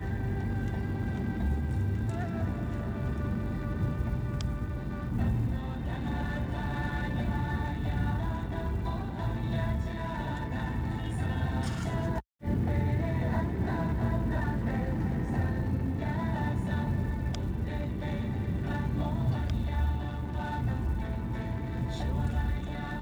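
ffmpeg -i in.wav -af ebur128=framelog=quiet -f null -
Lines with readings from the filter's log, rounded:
Integrated loudness:
  I:         -32.2 LUFS
  Threshold: -42.2 LUFS
Loudness range:
  LRA:         2.2 LU
  Threshold: -52.1 LUFS
  LRA low:   -33.0 LUFS
  LRA high:  -30.7 LUFS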